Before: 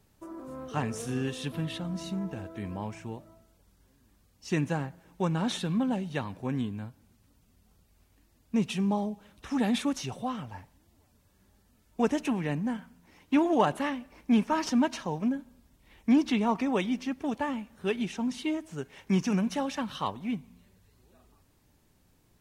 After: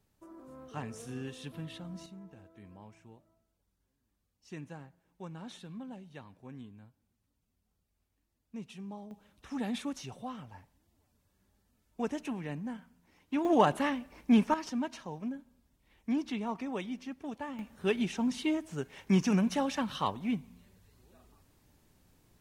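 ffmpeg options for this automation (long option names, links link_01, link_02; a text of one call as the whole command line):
ffmpeg -i in.wav -af "asetnsamples=nb_out_samples=441:pad=0,asendcmd='2.06 volume volume -16dB;9.11 volume volume -8dB;13.45 volume volume 0dB;14.54 volume volume -9dB;17.59 volume volume 0dB',volume=-9dB" out.wav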